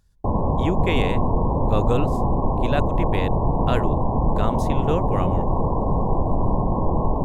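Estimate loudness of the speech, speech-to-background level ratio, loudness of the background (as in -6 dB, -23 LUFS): -28.0 LUFS, -5.0 dB, -23.0 LUFS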